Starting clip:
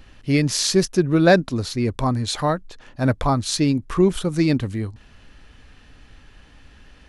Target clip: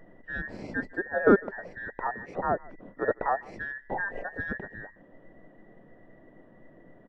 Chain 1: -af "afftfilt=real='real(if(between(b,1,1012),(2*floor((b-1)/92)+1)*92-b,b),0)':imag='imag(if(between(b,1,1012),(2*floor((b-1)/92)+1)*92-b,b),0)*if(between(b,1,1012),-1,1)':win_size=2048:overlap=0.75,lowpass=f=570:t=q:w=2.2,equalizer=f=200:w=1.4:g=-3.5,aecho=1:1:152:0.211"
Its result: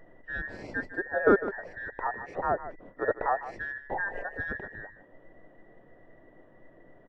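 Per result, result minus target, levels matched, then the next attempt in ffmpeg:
echo-to-direct +10 dB; 250 Hz band -3.0 dB
-af "afftfilt=real='real(if(between(b,1,1012),(2*floor((b-1)/92)+1)*92-b,b),0)':imag='imag(if(between(b,1,1012),(2*floor((b-1)/92)+1)*92-b,b),0)*if(between(b,1,1012),-1,1)':win_size=2048:overlap=0.75,lowpass=f=570:t=q:w=2.2,equalizer=f=200:w=1.4:g=-3.5,aecho=1:1:152:0.0668"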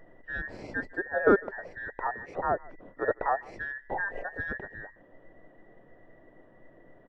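250 Hz band -3.0 dB
-af "afftfilt=real='real(if(between(b,1,1012),(2*floor((b-1)/92)+1)*92-b,b),0)':imag='imag(if(between(b,1,1012),(2*floor((b-1)/92)+1)*92-b,b),0)*if(between(b,1,1012),-1,1)':win_size=2048:overlap=0.75,lowpass=f=570:t=q:w=2.2,equalizer=f=200:w=1.4:g=4,aecho=1:1:152:0.0668"

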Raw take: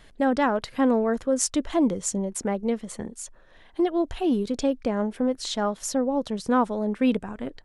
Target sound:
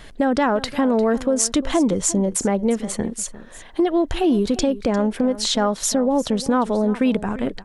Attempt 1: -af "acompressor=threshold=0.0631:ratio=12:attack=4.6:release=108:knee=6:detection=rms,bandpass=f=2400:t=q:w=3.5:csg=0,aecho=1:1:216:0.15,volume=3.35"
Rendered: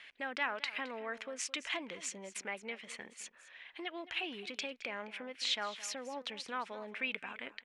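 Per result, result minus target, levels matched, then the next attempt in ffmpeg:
2 kHz band +13.0 dB; echo 135 ms early
-af "acompressor=threshold=0.0631:ratio=12:attack=4.6:release=108:knee=6:detection=rms,aecho=1:1:216:0.15,volume=3.35"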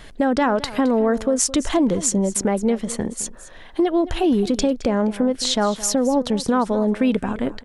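echo 135 ms early
-af "acompressor=threshold=0.0631:ratio=12:attack=4.6:release=108:knee=6:detection=rms,aecho=1:1:351:0.15,volume=3.35"

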